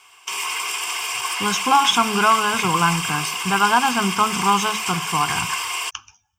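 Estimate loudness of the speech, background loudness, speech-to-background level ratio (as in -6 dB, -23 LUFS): -20.0 LUFS, -23.5 LUFS, 3.5 dB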